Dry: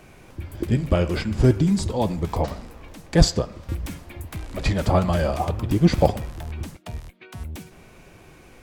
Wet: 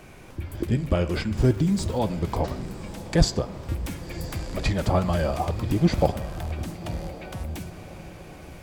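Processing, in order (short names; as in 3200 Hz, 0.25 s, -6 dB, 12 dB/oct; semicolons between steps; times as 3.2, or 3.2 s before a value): in parallel at +1 dB: compressor, threshold -29 dBFS, peak gain reduction 20 dB; 1.37–1.99 on the sum: sample gate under -35.5 dBFS; diffused feedback echo 1.08 s, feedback 46%, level -14 dB; gain -5 dB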